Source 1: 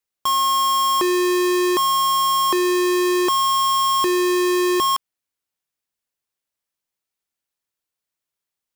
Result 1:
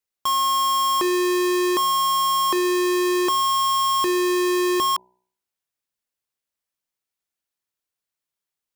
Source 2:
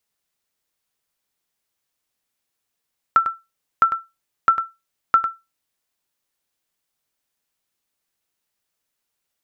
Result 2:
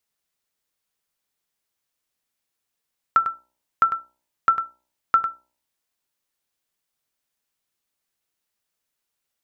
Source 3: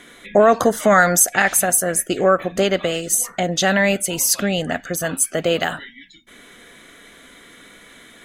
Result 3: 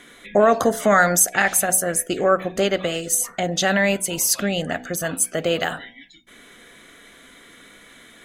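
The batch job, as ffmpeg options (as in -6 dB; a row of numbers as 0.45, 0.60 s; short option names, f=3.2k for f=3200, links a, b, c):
-af "bandreject=f=62.07:t=h:w=4,bandreject=f=124.14:t=h:w=4,bandreject=f=186.21:t=h:w=4,bandreject=f=248.28:t=h:w=4,bandreject=f=310.35:t=h:w=4,bandreject=f=372.42:t=h:w=4,bandreject=f=434.49:t=h:w=4,bandreject=f=496.56:t=h:w=4,bandreject=f=558.63:t=h:w=4,bandreject=f=620.7:t=h:w=4,bandreject=f=682.77:t=h:w=4,bandreject=f=744.84:t=h:w=4,bandreject=f=806.91:t=h:w=4,bandreject=f=868.98:t=h:w=4,bandreject=f=931.05:t=h:w=4,bandreject=f=993.12:t=h:w=4,volume=-2dB"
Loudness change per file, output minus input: -2.0, -2.0, -2.0 LU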